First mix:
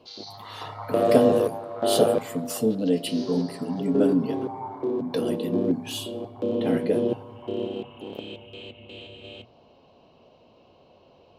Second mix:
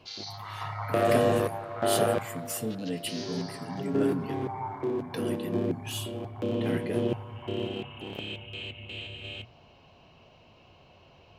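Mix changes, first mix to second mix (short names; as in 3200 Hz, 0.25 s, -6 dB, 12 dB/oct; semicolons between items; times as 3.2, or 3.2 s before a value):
background +7.5 dB; master: add ten-band EQ 250 Hz -9 dB, 500 Hz -11 dB, 1000 Hz -5 dB, 2000 Hz +4 dB, 4000 Hz -7 dB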